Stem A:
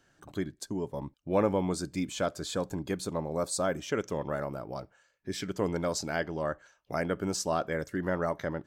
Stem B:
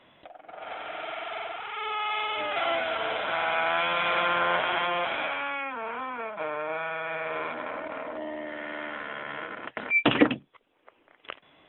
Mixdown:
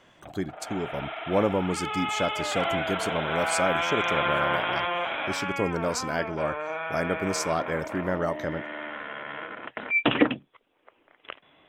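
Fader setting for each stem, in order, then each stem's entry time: +2.5, −0.5 decibels; 0.00, 0.00 seconds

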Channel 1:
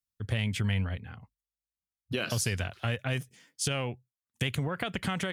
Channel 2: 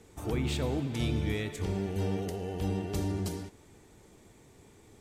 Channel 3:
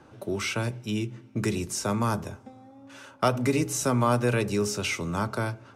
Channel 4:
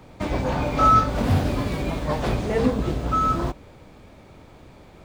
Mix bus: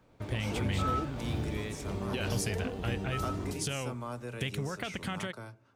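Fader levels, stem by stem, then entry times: −4.5, −5.0, −16.5, −17.5 decibels; 0.00, 0.25, 0.00, 0.00 seconds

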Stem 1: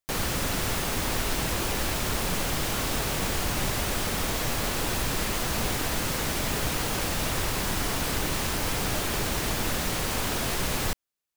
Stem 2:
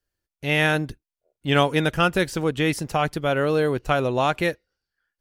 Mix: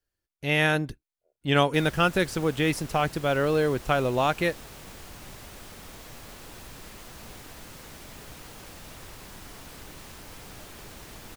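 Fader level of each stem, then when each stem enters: −16.5, −2.5 decibels; 1.65, 0.00 seconds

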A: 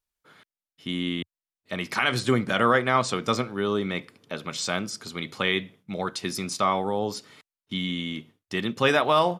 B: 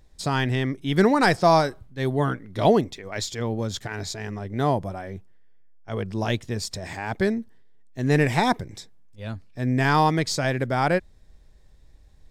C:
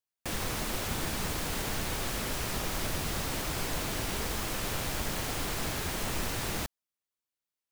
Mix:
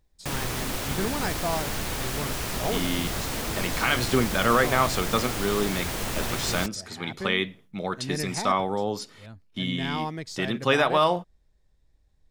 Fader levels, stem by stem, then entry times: −0.5, −12.0, +3.0 decibels; 1.85, 0.00, 0.00 seconds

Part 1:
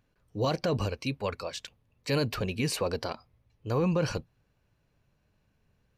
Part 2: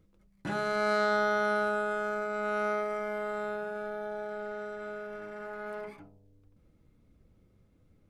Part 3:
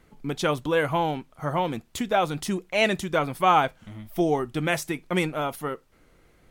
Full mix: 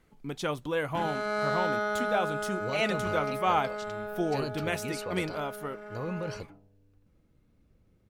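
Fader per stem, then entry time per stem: −8.5, −2.0, −7.0 decibels; 2.25, 0.50, 0.00 seconds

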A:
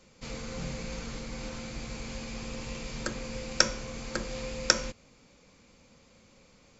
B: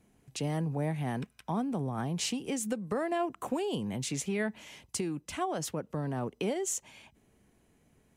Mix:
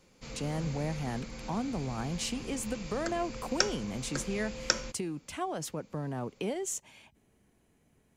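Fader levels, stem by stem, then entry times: −4.5, −2.0 decibels; 0.00, 0.00 seconds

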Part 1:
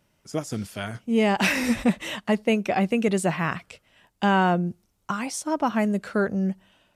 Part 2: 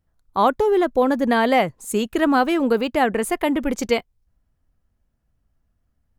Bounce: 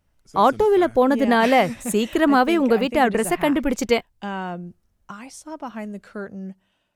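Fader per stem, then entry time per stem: −9.0, +1.0 decibels; 0.00, 0.00 seconds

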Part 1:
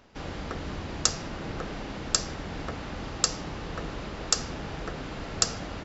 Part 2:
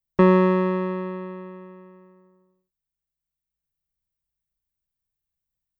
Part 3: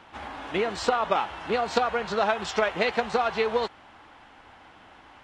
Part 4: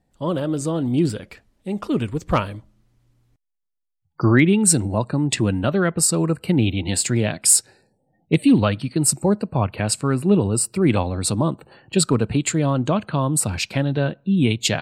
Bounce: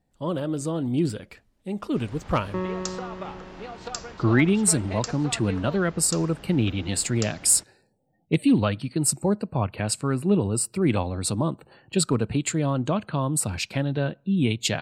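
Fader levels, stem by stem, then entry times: −9.5, −13.5, −13.5, −4.5 decibels; 1.80, 2.35, 2.10, 0.00 seconds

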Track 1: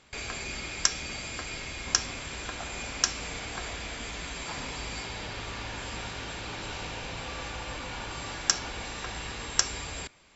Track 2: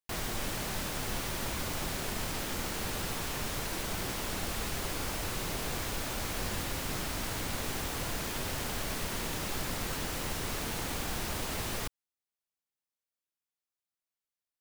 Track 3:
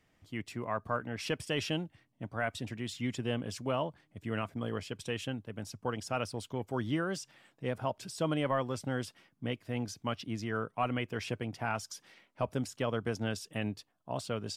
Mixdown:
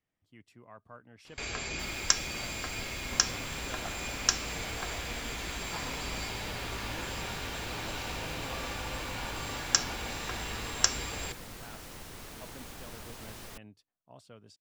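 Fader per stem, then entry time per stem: −0.5, −10.5, −17.0 decibels; 1.25, 1.70, 0.00 seconds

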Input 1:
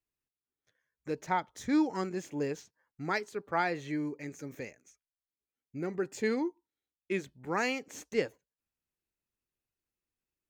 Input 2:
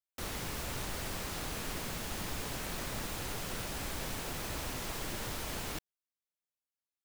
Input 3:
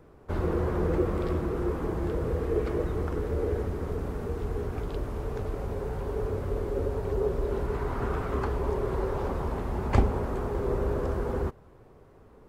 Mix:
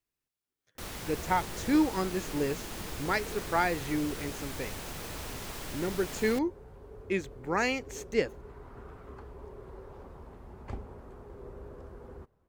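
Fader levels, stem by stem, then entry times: +2.5, −1.5, −17.5 decibels; 0.00, 0.60, 0.75 seconds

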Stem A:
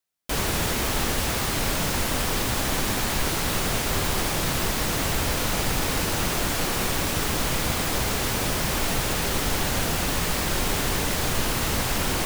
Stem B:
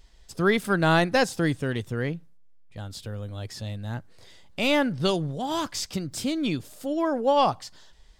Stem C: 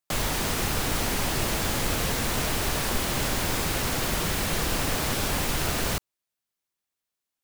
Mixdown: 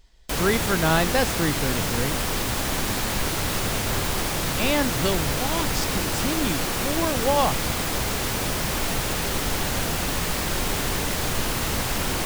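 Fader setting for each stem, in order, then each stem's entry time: −0.5 dB, −1.0 dB, muted; 0.00 s, 0.00 s, muted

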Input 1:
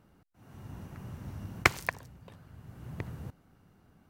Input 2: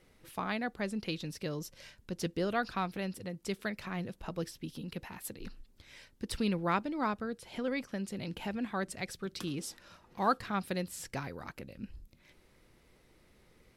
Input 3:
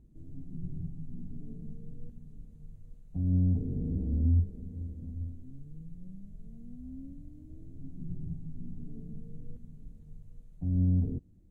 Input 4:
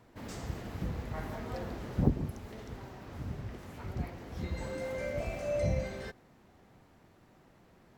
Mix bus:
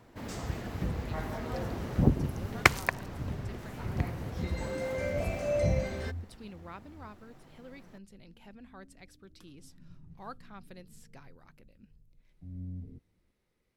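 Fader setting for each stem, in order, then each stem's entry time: +2.5, −15.5, −14.5, +3.0 decibels; 1.00, 0.00, 1.80, 0.00 seconds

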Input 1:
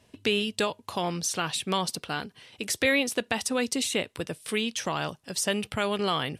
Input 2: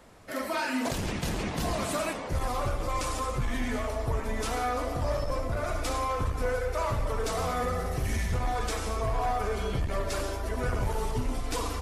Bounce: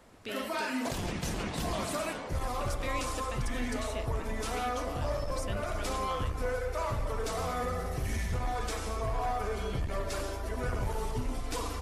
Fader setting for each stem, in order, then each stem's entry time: −15.5, −3.5 decibels; 0.00, 0.00 seconds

